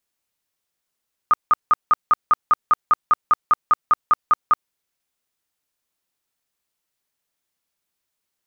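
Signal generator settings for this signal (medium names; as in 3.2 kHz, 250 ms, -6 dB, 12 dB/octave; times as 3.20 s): tone bursts 1.23 kHz, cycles 32, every 0.20 s, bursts 17, -10 dBFS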